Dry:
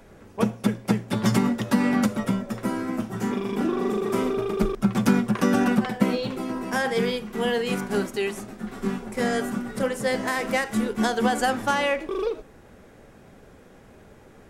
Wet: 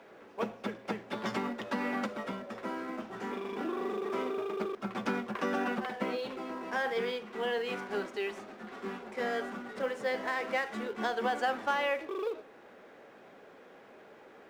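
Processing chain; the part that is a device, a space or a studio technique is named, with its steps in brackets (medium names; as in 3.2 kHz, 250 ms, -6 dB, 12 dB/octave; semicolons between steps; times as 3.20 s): phone line with mismatched companding (band-pass 380–3600 Hz; companding laws mixed up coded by mu); trim -7 dB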